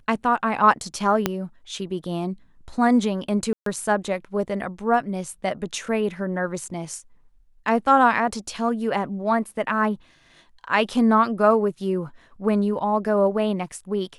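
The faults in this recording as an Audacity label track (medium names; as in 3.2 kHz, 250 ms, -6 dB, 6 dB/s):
1.260000	1.260000	pop -5 dBFS
3.530000	3.660000	dropout 133 ms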